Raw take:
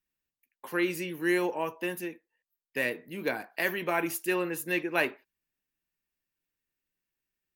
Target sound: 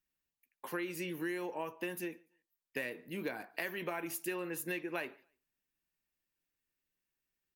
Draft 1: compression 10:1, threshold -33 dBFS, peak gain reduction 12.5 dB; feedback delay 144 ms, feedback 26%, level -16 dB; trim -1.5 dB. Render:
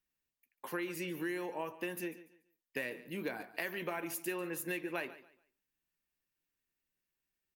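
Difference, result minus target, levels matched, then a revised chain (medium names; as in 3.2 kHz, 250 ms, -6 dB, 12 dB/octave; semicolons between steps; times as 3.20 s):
echo-to-direct +12 dB
compression 10:1, threshold -33 dBFS, peak gain reduction 12.5 dB; feedback delay 144 ms, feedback 26%, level -28 dB; trim -1.5 dB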